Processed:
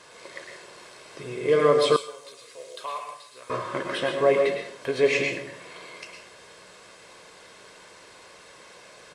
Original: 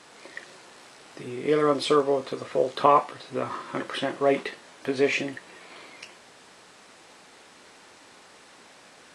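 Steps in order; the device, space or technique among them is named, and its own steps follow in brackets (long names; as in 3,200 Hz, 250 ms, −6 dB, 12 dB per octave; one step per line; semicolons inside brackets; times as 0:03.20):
microphone above a desk (comb filter 1.9 ms, depth 50%; convolution reverb RT60 0.60 s, pre-delay 100 ms, DRR 2.5 dB)
0:01.96–0:03.50: first-order pre-emphasis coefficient 0.97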